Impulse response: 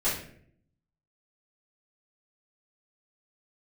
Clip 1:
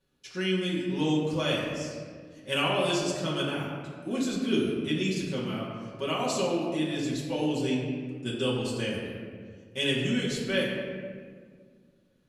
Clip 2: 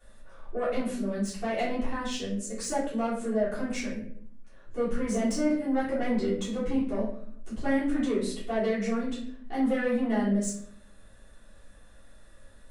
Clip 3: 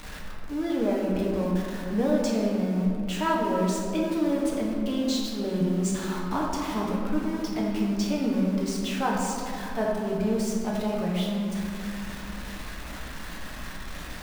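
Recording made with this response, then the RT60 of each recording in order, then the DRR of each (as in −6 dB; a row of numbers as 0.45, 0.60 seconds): 2; 1.8, 0.60, 2.5 seconds; −7.5, −13.0, −3.5 decibels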